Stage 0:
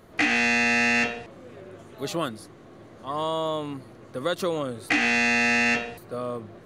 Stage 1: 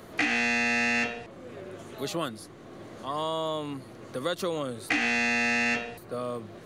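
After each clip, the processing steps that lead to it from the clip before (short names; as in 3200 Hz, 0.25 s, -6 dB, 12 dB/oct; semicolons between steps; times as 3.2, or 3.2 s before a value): three-band squash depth 40%; gain -4 dB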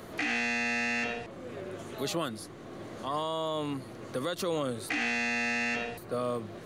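limiter -23.5 dBFS, peak gain reduction 8.5 dB; gain +1.5 dB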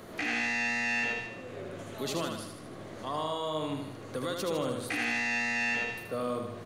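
feedback echo 77 ms, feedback 55%, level -5 dB; gain -2 dB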